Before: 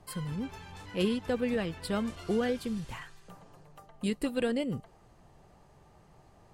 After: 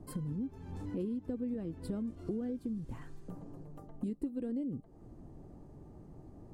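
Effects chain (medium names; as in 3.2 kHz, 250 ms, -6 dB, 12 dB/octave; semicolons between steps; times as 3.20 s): FFT filter 190 Hz 0 dB, 290 Hz +8 dB, 410 Hz -2 dB, 800 Hz -11 dB, 2.9 kHz -22 dB, 8.7 kHz -15 dB; compression 5:1, threshold -44 dBFS, peak gain reduction 20.5 dB; trim +7.5 dB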